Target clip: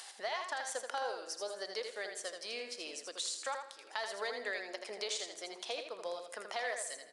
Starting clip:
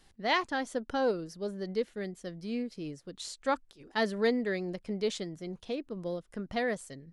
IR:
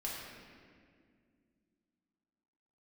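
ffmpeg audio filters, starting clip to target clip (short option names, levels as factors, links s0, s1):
-filter_complex "[0:a]highpass=f=700:w=0.5412,highpass=f=700:w=1.3066,equalizer=f=1700:w=0.32:g=-8.5,asplit=2[s0][s1];[s1]acompressor=mode=upward:threshold=0.00447:ratio=2.5,volume=1.41[s2];[s0][s2]amix=inputs=2:normalize=0,alimiter=level_in=1.41:limit=0.0631:level=0:latency=1:release=113,volume=0.708,acompressor=threshold=0.01:ratio=5,acrusher=bits=8:mode=log:mix=0:aa=0.000001,aecho=1:1:81|162|243:0.501|0.13|0.0339,asplit=2[s3][s4];[1:a]atrim=start_sample=2205[s5];[s4][s5]afir=irnorm=-1:irlink=0,volume=0.211[s6];[s3][s6]amix=inputs=2:normalize=0,aresample=22050,aresample=44100,volume=1.5"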